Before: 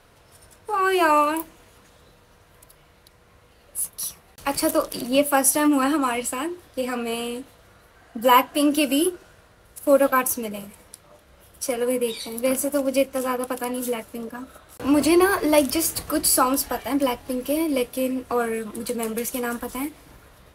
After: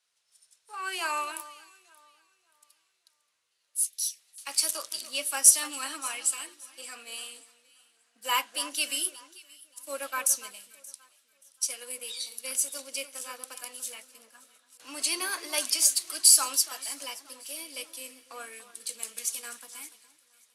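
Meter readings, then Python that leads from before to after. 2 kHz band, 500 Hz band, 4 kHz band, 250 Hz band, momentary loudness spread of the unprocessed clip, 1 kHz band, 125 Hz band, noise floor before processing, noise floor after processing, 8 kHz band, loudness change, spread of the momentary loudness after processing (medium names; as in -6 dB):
-8.0 dB, -22.0 dB, 0.0 dB, -28.0 dB, 14 LU, -14.0 dB, under -35 dB, -55 dBFS, -74 dBFS, +2.5 dB, -4.5 dB, 22 LU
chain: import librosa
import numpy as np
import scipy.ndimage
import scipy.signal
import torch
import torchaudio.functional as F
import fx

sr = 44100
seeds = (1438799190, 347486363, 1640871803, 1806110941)

p1 = fx.weighting(x, sr, curve='ITU-R 468')
p2 = fx.spec_erase(p1, sr, start_s=3.86, length_s=0.32, low_hz=720.0, high_hz=1600.0)
p3 = scipy.signal.sosfilt(scipy.signal.butter(2, 84.0, 'highpass', fs=sr, output='sos'), p2)
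p4 = fx.high_shelf(p3, sr, hz=2600.0, db=9.5)
p5 = p4 + fx.echo_alternate(p4, sr, ms=289, hz=1800.0, feedback_pct=62, wet_db=-12, dry=0)
p6 = fx.band_widen(p5, sr, depth_pct=40)
y = F.gain(torch.from_numpy(p6), -18.0).numpy()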